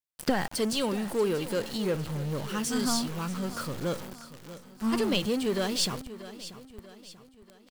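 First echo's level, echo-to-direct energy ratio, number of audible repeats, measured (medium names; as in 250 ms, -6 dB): -15.0 dB, -14.0 dB, 3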